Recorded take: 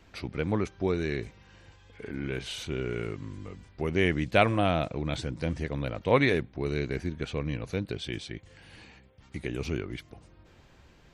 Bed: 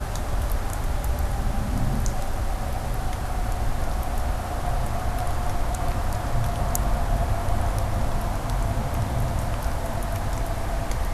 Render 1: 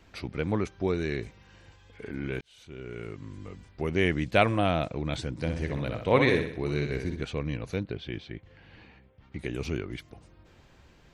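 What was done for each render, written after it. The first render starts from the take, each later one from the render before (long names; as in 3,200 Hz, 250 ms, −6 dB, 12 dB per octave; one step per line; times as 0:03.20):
0:02.41–0:03.54: fade in
0:05.32–0:07.24: flutter between parallel walls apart 10.7 metres, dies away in 0.58 s
0:07.83–0:09.39: high-frequency loss of the air 240 metres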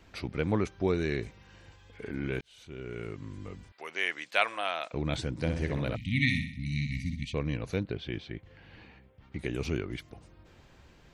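0:03.72–0:04.93: high-pass filter 970 Hz
0:05.96–0:07.34: linear-phase brick-wall band-stop 280–1,800 Hz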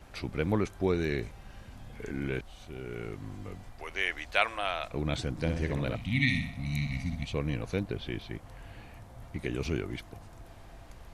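mix in bed −24 dB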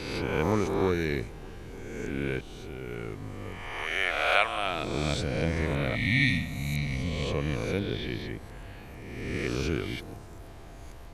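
peak hold with a rise ahead of every peak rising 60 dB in 1.44 s
delay with a low-pass on its return 308 ms, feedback 77%, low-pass 1,000 Hz, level −22 dB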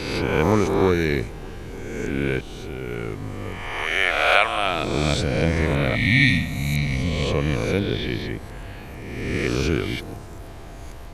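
level +7.5 dB
brickwall limiter −2 dBFS, peak gain reduction 2 dB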